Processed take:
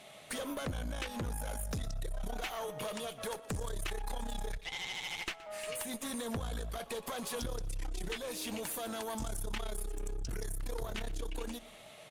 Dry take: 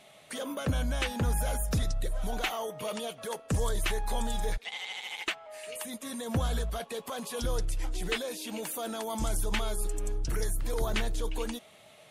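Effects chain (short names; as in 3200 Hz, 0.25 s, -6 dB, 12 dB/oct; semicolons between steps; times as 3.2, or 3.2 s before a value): compressor 6:1, threshold -38 dBFS, peak gain reduction 13 dB; tube stage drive 36 dB, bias 0.75; feedback echo 0.121 s, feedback 43%, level -19 dB; gain +6.5 dB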